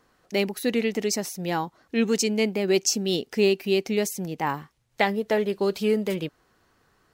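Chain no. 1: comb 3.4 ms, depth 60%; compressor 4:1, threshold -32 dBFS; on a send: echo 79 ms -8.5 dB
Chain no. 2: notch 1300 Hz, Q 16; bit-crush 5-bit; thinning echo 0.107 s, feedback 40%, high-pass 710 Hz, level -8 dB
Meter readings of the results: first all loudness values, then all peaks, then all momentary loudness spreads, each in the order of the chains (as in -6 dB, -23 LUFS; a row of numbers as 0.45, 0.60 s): -34.5, -24.5 LUFS; -17.0, -6.5 dBFS; 5, 6 LU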